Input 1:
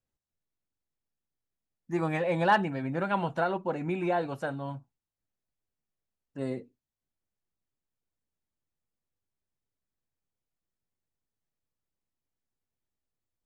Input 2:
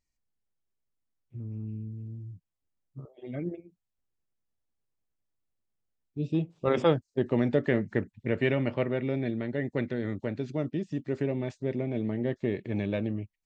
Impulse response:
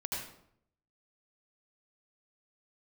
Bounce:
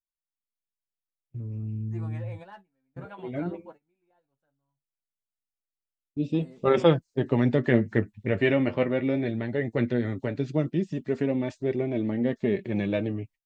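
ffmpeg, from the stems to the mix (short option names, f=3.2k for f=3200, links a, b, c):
-filter_complex "[0:a]volume=-11.5dB[a];[1:a]dynaudnorm=f=140:g=5:m=6.5dB,volume=1dB,asplit=2[b][c];[c]apad=whole_len=593213[d];[a][d]sidechaingate=range=-10dB:threshold=-45dB:ratio=16:detection=peak[e];[e][b]amix=inputs=2:normalize=0,agate=range=-20dB:threshold=-45dB:ratio=16:detection=peak,flanger=delay=2.5:depth=9.3:regen=37:speed=0.17:shape=triangular"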